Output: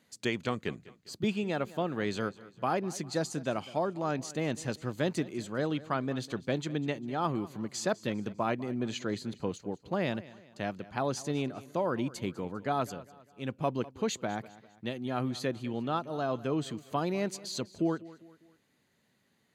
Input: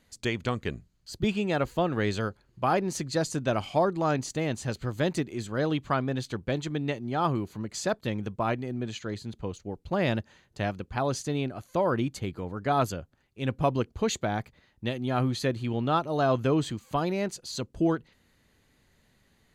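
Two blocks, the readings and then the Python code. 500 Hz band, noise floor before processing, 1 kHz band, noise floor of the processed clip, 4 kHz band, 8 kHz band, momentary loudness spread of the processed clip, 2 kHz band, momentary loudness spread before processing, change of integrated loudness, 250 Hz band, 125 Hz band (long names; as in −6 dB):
−4.0 dB, −67 dBFS, −5.0 dB, −72 dBFS, −3.5 dB, −3.5 dB, 6 LU, −4.0 dB, 9 LU, −4.5 dB, −3.5 dB, −6.5 dB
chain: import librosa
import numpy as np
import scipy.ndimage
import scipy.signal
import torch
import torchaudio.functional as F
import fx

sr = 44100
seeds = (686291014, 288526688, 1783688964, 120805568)

y = fx.rider(x, sr, range_db=5, speed_s=0.5)
y = scipy.signal.sosfilt(scipy.signal.cheby1(2, 1.0, 170.0, 'highpass', fs=sr, output='sos'), y)
y = fx.echo_feedback(y, sr, ms=200, feedback_pct=43, wet_db=-19.0)
y = y * librosa.db_to_amplitude(-3.0)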